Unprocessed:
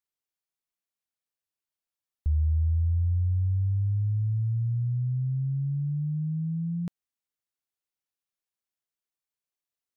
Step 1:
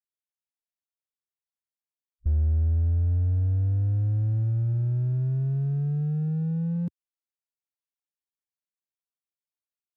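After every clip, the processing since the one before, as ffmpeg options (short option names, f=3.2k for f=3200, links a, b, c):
-filter_complex "[0:a]afwtdn=0.0316,asplit=2[a][b];[b]asoftclip=type=hard:threshold=-33dB,volume=-3.5dB[c];[a][c]amix=inputs=2:normalize=0"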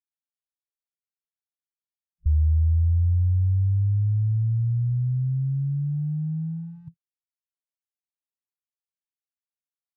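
-af "afwtdn=0.0282,afftfilt=real='re*(1-between(b*sr/4096,170,730))':imag='im*(1-between(b*sr/4096,170,730))':win_size=4096:overlap=0.75,equalizer=f=220:w=2.1:g=-12.5,volume=3.5dB"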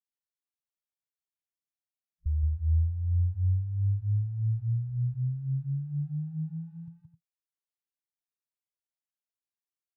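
-af "aecho=1:1:172|262.4:0.631|0.251,volume=-8dB"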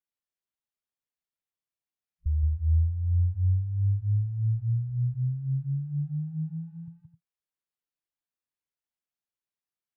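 -af "bass=f=250:g=2,treble=f=4k:g=-6"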